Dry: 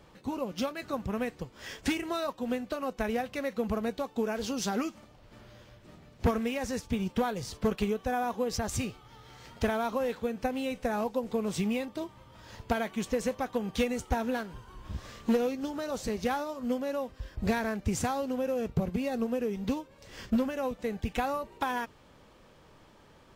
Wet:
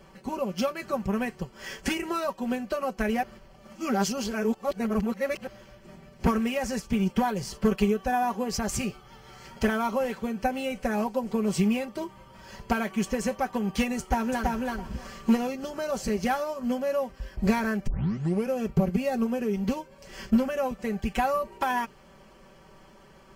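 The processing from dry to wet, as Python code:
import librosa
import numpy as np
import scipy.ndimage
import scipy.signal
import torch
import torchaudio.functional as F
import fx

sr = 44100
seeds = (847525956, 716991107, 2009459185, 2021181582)

y = fx.echo_throw(x, sr, start_s=13.99, length_s=0.55, ms=330, feedback_pct=15, wet_db=-2.0)
y = fx.edit(y, sr, fx.reverse_span(start_s=3.23, length_s=2.24),
    fx.tape_start(start_s=17.87, length_s=0.63), tone=tone)
y = fx.notch(y, sr, hz=3700.0, q=5.4)
y = y + 0.7 * np.pad(y, (int(5.2 * sr / 1000.0), 0))[:len(y)]
y = F.gain(torch.from_numpy(y), 2.5).numpy()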